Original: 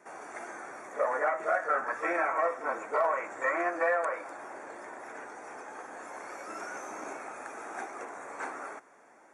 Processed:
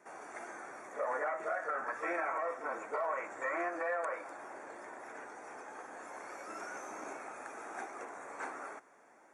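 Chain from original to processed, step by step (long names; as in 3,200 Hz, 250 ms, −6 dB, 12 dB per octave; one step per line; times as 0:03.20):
brickwall limiter −22.5 dBFS, peak gain reduction 7 dB
level −4 dB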